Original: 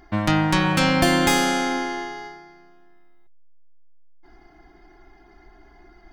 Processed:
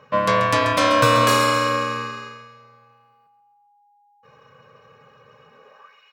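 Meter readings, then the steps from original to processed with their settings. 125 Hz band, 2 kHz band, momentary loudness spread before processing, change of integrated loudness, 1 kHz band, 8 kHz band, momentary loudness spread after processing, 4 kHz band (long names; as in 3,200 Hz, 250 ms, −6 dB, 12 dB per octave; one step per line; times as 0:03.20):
−2.0 dB, +1.5 dB, 13 LU, +2.0 dB, +5.5 dB, −1.0 dB, 13 LU, +1.0 dB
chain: low shelf with overshoot 150 Hz −12 dB, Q 3
ring modulation 820 Hz
high-pass filter sweep 140 Hz → 2,500 Hz, 0:05.48–0:05.98
on a send: repeating echo 135 ms, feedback 43%, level −10 dB
on the sum: level +2 dB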